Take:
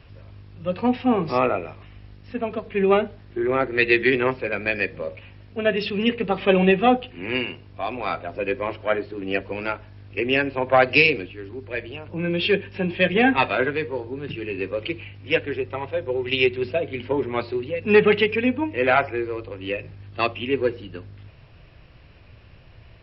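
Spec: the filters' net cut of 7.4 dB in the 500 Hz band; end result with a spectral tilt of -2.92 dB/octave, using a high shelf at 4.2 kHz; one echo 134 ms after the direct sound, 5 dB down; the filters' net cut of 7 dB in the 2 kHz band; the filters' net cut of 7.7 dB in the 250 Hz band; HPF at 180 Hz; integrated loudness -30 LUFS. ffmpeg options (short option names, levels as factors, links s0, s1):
-af "highpass=180,equalizer=f=250:t=o:g=-6,equalizer=f=500:t=o:g=-7,equalizer=f=2000:t=o:g=-7,highshelf=f=4200:g=-7,aecho=1:1:134:0.562,volume=0.841"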